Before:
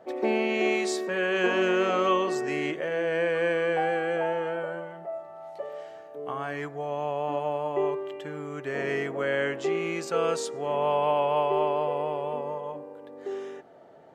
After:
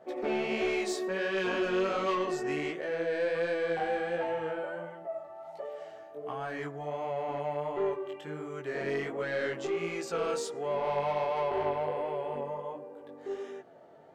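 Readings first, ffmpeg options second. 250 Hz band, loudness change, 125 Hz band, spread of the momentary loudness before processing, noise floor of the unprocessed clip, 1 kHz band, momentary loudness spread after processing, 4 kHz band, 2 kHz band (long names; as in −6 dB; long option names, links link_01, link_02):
−5.0 dB, −5.0 dB, −4.0 dB, 14 LU, −46 dBFS, −5.5 dB, 12 LU, −5.0 dB, −5.5 dB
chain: -af "asoftclip=type=tanh:threshold=-22dB,flanger=delay=15.5:depth=6.1:speed=1.4"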